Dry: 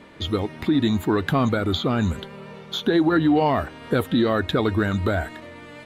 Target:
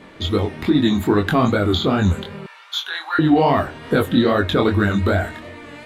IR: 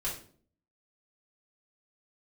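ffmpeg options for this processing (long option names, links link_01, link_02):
-filter_complex "[0:a]asplit=2[link_01][link_02];[1:a]atrim=start_sample=2205[link_03];[link_02][link_03]afir=irnorm=-1:irlink=0,volume=-17dB[link_04];[link_01][link_04]amix=inputs=2:normalize=0,flanger=delay=19.5:depth=5.5:speed=2.5,asettb=1/sr,asplit=3[link_05][link_06][link_07];[link_05]atrim=end=2.464[link_08];[link_06]atrim=start=2.46:end=3.19,asetpts=PTS-STARTPTS,afade=type=in:duration=0.004:curve=qsin,afade=type=out:start_time=0.726:duration=0.004:curve=qsin,highpass=frequency=1000:width=0.5412,highpass=frequency=1000:width=1.3066[link_09];[link_07]atrim=start=3.186[link_10];[link_08][link_09]acrossfade=duration=0.004:curve1=hsin:curve2=qsin[link_11];[link_11][link_10]acrossfade=duration=0.004:curve1=qsin:curve2=hsin,volume=6.5dB"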